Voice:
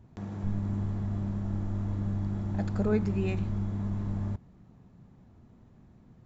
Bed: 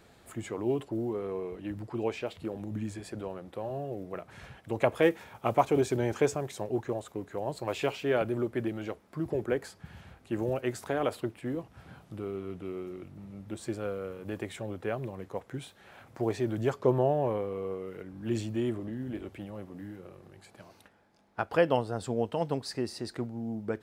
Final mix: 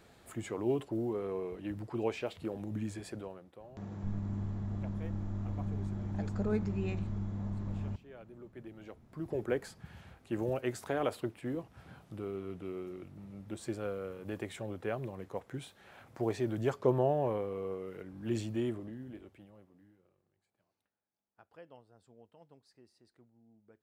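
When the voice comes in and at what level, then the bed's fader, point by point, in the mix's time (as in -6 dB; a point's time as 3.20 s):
3.60 s, -5.5 dB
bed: 3.10 s -2 dB
4.03 s -26 dB
8.08 s -26 dB
9.44 s -3 dB
18.62 s -3 dB
20.44 s -29 dB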